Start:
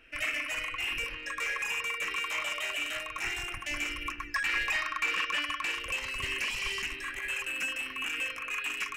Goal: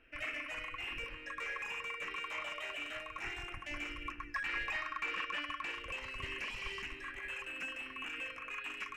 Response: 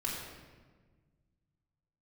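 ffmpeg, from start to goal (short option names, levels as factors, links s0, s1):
-filter_complex "[0:a]lowpass=f=1700:p=1,asplit=2[s0][s1];[s1]aderivative[s2];[1:a]atrim=start_sample=2205,adelay=134[s3];[s2][s3]afir=irnorm=-1:irlink=0,volume=0.106[s4];[s0][s4]amix=inputs=2:normalize=0,volume=0.631"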